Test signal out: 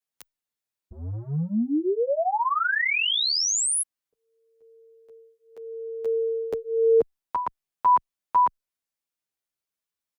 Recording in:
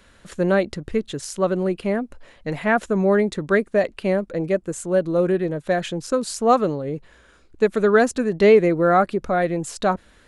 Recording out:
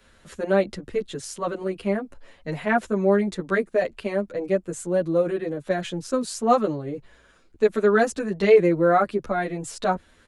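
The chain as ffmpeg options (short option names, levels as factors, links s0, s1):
-filter_complex "[0:a]acrossover=split=160|2900[s0][s1][s2];[s0]asoftclip=type=tanh:threshold=0.0224[s3];[s3][s1][s2]amix=inputs=3:normalize=0,asplit=2[s4][s5];[s5]adelay=9.1,afreqshift=-0.8[s6];[s4][s6]amix=inputs=2:normalize=1"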